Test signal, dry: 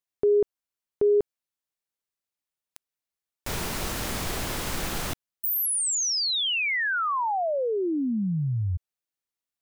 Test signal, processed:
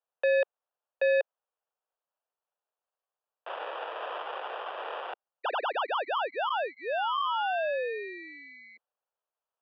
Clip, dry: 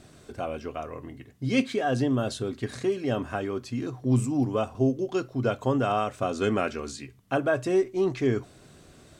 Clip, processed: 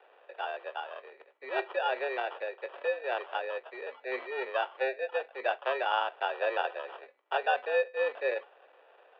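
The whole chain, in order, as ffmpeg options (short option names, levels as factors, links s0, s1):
-af "acrusher=samples=22:mix=1:aa=0.000001,highpass=f=360:t=q:w=0.5412,highpass=f=360:t=q:w=1.307,lowpass=f=3100:t=q:w=0.5176,lowpass=f=3100:t=q:w=0.7071,lowpass=f=3100:t=q:w=1.932,afreqshift=130,volume=0.75"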